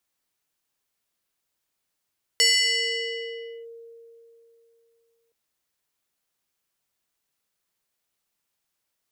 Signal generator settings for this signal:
two-operator FM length 2.92 s, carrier 462 Hz, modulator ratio 5.36, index 2.8, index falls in 1.26 s linear, decay 3.13 s, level −14.5 dB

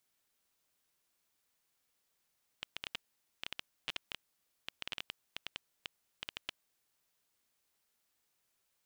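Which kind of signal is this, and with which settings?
Geiger counter clicks 8.2 per second −21 dBFS 4.32 s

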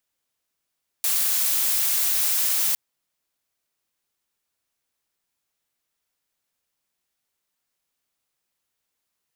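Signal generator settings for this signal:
noise blue, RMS −22 dBFS 1.71 s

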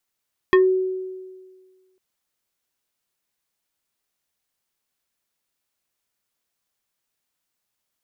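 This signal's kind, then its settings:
two-operator FM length 1.45 s, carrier 374 Hz, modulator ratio 3.88, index 1.1, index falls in 0.18 s exponential, decay 1.62 s, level −9.5 dB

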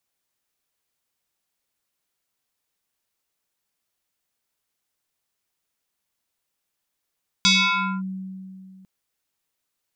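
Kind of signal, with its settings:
two-operator FM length 1.40 s, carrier 189 Hz, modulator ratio 6.36, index 4.5, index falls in 0.57 s linear, decay 2.55 s, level −12.5 dB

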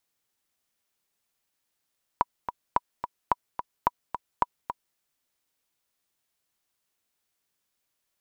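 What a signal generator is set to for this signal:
click track 217 BPM, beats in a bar 2, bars 5, 975 Hz, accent 9.5 dB −7.5 dBFS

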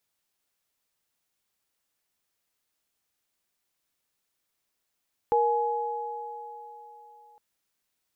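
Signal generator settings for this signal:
inharmonic partials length 2.06 s, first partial 471 Hz, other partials 841 Hz, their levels 1 dB, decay 3.01 s, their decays 3.81 s, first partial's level −22 dB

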